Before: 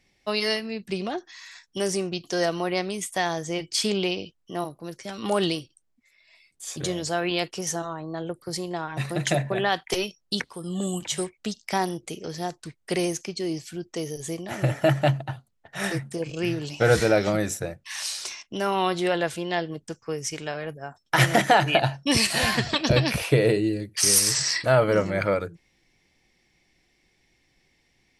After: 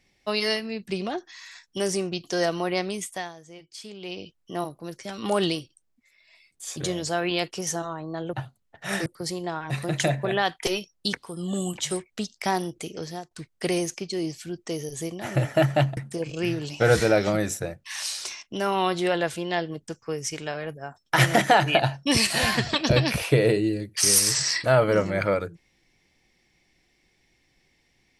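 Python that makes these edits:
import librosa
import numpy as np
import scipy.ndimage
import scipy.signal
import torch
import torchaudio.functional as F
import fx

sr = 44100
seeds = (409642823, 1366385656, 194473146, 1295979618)

y = fx.edit(x, sr, fx.fade_down_up(start_s=2.95, length_s=1.43, db=-16.5, fade_s=0.38),
    fx.fade_out_to(start_s=12.3, length_s=0.28, floor_db=-19.0),
    fx.move(start_s=15.24, length_s=0.73, to_s=8.33), tone=tone)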